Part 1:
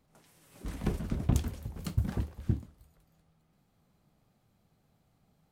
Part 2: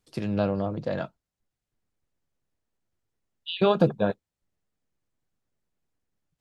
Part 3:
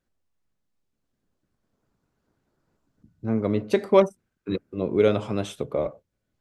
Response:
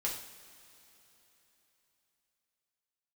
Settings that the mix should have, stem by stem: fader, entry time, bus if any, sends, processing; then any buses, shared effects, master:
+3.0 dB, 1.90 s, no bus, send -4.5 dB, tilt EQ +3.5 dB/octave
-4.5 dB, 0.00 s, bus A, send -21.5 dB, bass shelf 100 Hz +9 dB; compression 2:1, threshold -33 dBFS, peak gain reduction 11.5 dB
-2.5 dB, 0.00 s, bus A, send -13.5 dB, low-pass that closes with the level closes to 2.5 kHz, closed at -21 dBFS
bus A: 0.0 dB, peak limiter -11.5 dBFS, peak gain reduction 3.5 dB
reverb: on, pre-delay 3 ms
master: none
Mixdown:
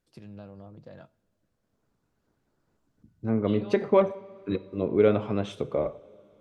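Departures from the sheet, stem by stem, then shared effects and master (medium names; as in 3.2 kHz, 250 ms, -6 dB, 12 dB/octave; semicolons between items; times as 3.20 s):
stem 1: muted; stem 2 -4.5 dB -> -14.0 dB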